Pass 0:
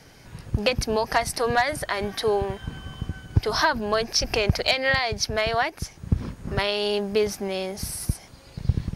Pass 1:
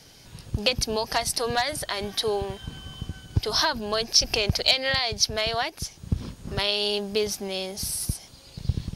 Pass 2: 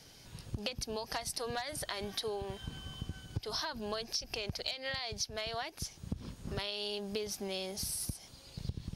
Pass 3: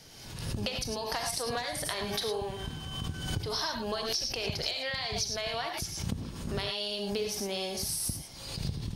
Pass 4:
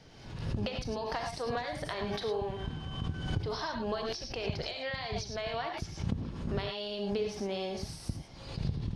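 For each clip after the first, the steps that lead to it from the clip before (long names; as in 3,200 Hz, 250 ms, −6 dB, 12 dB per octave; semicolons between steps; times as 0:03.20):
high shelf with overshoot 2,600 Hz +6.5 dB, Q 1.5; level −3.5 dB
downward compressor 12 to 1, threshold −28 dBFS, peak gain reduction 15 dB; level −5.5 dB
reverb whose tail is shaped and stops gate 130 ms rising, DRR 3 dB; background raised ahead of every attack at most 49 dB per second; level +3 dB
head-to-tape spacing loss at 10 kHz 23 dB; level +1.5 dB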